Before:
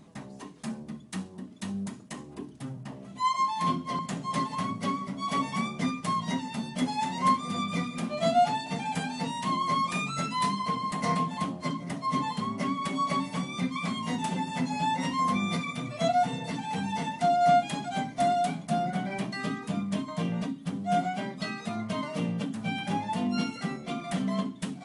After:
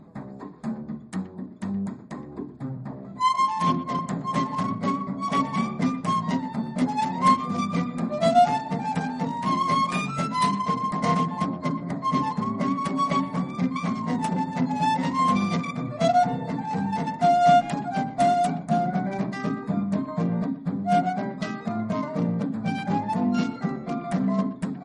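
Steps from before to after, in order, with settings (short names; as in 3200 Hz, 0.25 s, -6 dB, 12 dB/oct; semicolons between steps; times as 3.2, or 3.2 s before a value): Wiener smoothing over 15 samples; speakerphone echo 0.12 s, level -15 dB; gain +6 dB; MP3 40 kbps 44100 Hz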